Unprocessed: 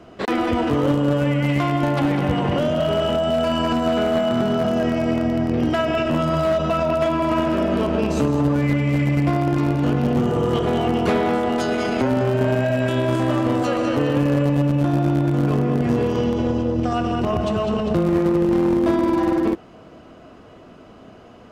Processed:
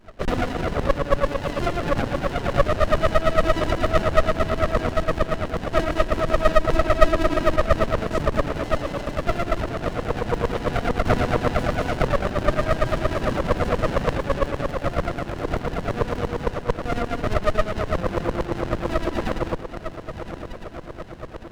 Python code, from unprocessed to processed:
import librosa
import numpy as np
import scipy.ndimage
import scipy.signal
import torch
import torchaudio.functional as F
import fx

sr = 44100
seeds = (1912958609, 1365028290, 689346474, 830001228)

y = fx.echo_diffused(x, sr, ms=1050, feedback_pct=65, wet_db=-11)
y = fx.filter_lfo_highpass(y, sr, shape='saw_down', hz=8.8, low_hz=490.0, high_hz=2000.0, q=7.0)
y = fx.running_max(y, sr, window=33)
y = F.gain(torch.from_numpy(y), -2.5).numpy()